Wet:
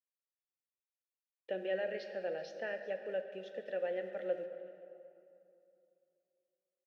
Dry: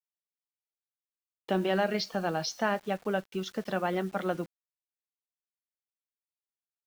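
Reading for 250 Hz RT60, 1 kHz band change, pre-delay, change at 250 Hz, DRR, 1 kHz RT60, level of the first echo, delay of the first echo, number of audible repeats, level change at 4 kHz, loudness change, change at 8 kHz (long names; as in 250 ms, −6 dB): 3.1 s, −17.5 dB, 21 ms, −17.5 dB, 7.5 dB, 2.7 s, −19.0 dB, 382 ms, 1, −16.0 dB, −8.5 dB, below −20 dB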